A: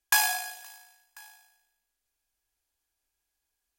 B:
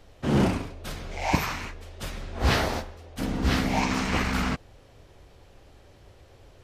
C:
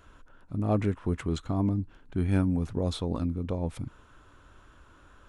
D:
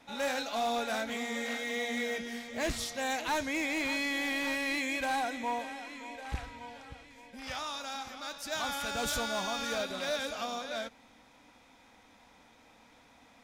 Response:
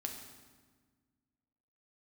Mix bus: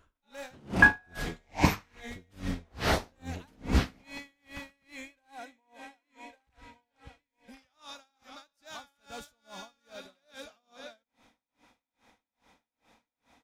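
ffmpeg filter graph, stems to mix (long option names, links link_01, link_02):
-filter_complex "[0:a]lowpass=frequency=1500:width_type=q:width=4.9,adelay=700,volume=-1.5dB[link_01];[1:a]adelay=300,volume=1.5dB[link_02];[2:a]volume=-6.5dB,asplit=2[link_03][link_04];[3:a]acompressor=threshold=-36dB:ratio=6,adelay=150,volume=-2dB[link_05];[link_04]apad=whole_len=305824[link_06];[link_02][link_06]sidechaingate=range=-31dB:threshold=-55dB:ratio=16:detection=peak[link_07];[link_01][link_07][link_03][link_05]amix=inputs=4:normalize=0,aeval=exprs='val(0)*pow(10,-35*(0.5-0.5*cos(2*PI*2.4*n/s))/20)':channel_layout=same"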